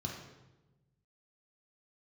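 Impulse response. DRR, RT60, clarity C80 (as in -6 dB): -1.5 dB, 1.1 s, 5.5 dB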